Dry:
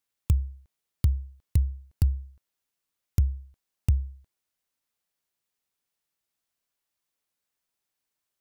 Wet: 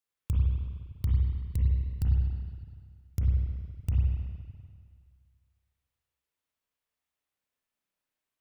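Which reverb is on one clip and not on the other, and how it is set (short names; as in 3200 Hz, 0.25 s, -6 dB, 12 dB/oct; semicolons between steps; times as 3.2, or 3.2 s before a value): spring tank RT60 1.9 s, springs 31/47/51 ms, chirp 70 ms, DRR -5 dB; gain -7.5 dB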